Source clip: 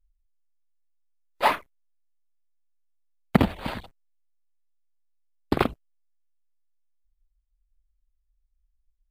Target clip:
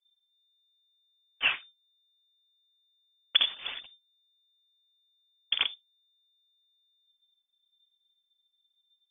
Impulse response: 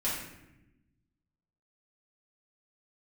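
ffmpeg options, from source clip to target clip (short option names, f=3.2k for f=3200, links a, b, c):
-filter_complex "[0:a]asplit=2[a][b];[1:a]atrim=start_sample=2205,atrim=end_sample=3528,asetrate=42777,aresample=44100[c];[b][c]afir=irnorm=-1:irlink=0,volume=-27.5dB[d];[a][d]amix=inputs=2:normalize=0,lowpass=f=3.1k:t=q:w=0.5098,lowpass=f=3.1k:t=q:w=0.6013,lowpass=f=3.1k:t=q:w=0.9,lowpass=f=3.1k:t=q:w=2.563,afreqshift=-3600,volume=-6dB"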